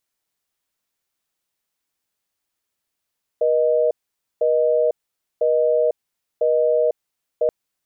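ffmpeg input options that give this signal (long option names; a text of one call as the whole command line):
ffmpeg -f lavfi -i "aevalsrc='0.133*(sin(2*PI*480*t)+sin(2*PI*620*t))*clip(min(mod(t,1),0.5-mod(t,1))/0.005,0,1)':duration=4.08:sample_rate=44100" out.wav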